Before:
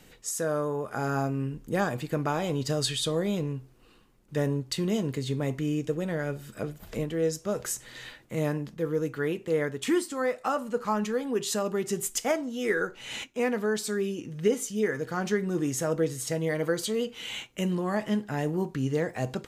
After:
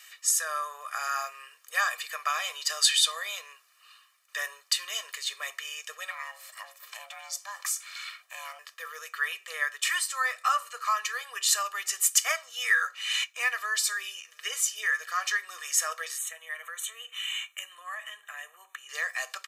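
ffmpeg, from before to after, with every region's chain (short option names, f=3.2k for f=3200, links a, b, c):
-filter_complex "[0:a]asettb=1/sr,asplit=3[a][b][c];[a]atrim=end=6.104[d];[b]atrim=start=6.1:end=8.59,asetpts=PTS-STARTPTS,afade=t=in:d=0.004:c=qsin,afade=t=out:st=2.486:d=0.004:c=qsin,aeval=exprs='val(0)*sin(2*PI*400*n/s)':c=same,acompressor=threshold=-34dB:ratio=2:attack=3.2:release=140:knee=1:detection=peak[e];[c]atrim=start=8.586[f];[d][e]acrossfade=d=0.004:c1=hsin:c2=qsin[g];[g][f]acrossfade=d=0.004:c1=qsin:c2=hsin,asettb=1/sr,asplit=3[h][i][j];[h]atrim=end=16.184[k];[i]atrim=start=16.18:end=18.89,asetpts=PTS-STARTPTS,afade=t=in:d=0.004:c=qsin,afade=t=out:st=2.706:d=0.004:c=qsin,acompressor=threshold=-40dB:ratio=2:attack=3.2:release=140:knee=1:detection=peak,asuperstop=centerf=4900:order=4:qfactor=1.8[l];[j]atrim=start=18.886[m];[k][l]acrossfade=d=0.004:c1=hsin:c2=qsin[n];[n][m]acrossfade=d=0.004:c1=qsin:c2=hsin,highpass=f=1.2k:w=0.5412,highpass=f=1.2k:w=1.3066,bandreject=f=3.4k:w=27,aecho=1:1:1.7:0.86,volume=6dB"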